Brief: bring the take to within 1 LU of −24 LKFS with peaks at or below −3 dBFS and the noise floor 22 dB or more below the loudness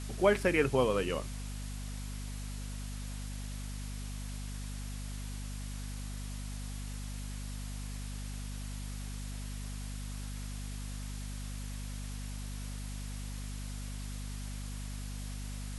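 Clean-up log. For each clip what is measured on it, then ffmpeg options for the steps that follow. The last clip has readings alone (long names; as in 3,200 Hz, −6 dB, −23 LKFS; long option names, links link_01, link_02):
mains hum 50 Hz; hum harmonics up to 250 Hz; level of the hum −38 dBFS; background noise floor −40 dBFS; target noise floor −61 dBFS; integrated loudness −38.5 LKFS; sample peak −13.5 dBFS; target loudness −24.0 LKFS
→ -af "bandreject=frequency=50:width_type=h:width=4,bandreject=frequency=100:width_type=h:width=4,bandreject=frequency=150:width_type=h:width=4,bandreject=frequency=200:width_type=h:width=4,bandreject=frequency=250:width_type=h:width=4"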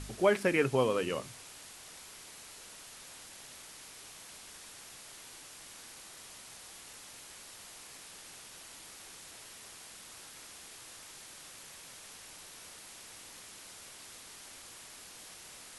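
mains hum none found; background noise floor −51 dBFS; target noise floor −62 dBFS
→ -af "afftdn=noise_reduction=11:noise_floor=-51"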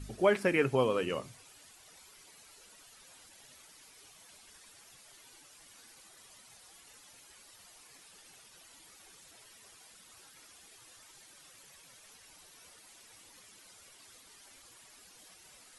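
background noise floor −58 dBFS; integrated loudness −30.0 LKFS; sample peak −13.5 dBFS; target loudness −24.0 LKFS
→ -af "volume=6dB"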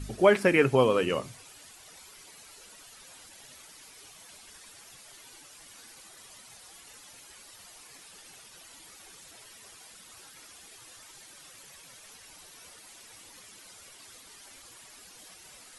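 integrated loudness −24.0 LKFS; sample peak −7.5 dBFS; background noise floor −52 dBFS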